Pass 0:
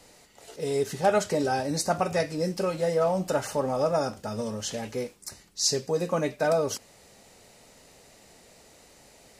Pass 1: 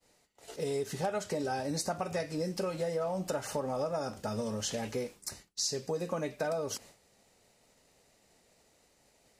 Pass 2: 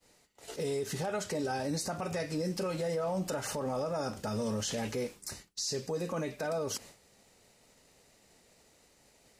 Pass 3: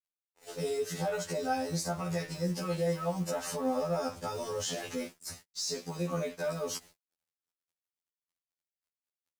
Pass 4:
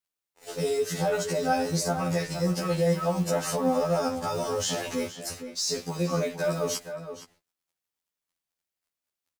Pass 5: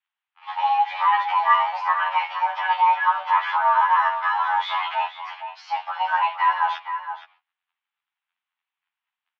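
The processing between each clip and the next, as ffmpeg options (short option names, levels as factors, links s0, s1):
-af "agate=range=0.0224:threshold=0.00562:ratio=3:detection=peak,acompressor=threshold=0.0282:ratio=5"
-af "equalizer=f=680:t=o:w=0.77:g=-2.5,alimiter=level_in=1.88:limit=0.0631:level=0:latency=1:release=13,volume=0.531,volume=1.5"
-af "acrusher=bits=7:mode=log:mix=0:aa=0.000001,aeval=exprs='sgn(val(0))*max(abs(val(0))-0.00211,0)':c=same,afftfilt=real='re*2*eq(mod(b,4),0)':imag='im*2*eq(mod(b,4),0)':win_size=2048:overlap=0.75,volume=1.5"
-filter_complex "[0:a]asplit=2[s0][s1];[s1]adelay=466.5,volume=0.355,highshelf=f=4000:g=-10.5[s2];[s0][s2]amix=inputs=2:normalize=0,volume=2"
-af "highpass=f=380:t=q:w=0.5412,highpass=f=380:t=q:w=1.307,lowpass=f=2900:t=q:w=0.5176,lowpass=f=2900:t=q:w=0.7071,lowpass=f=2900:t=q:w=1.932,afreqshift=400,volume=2.66"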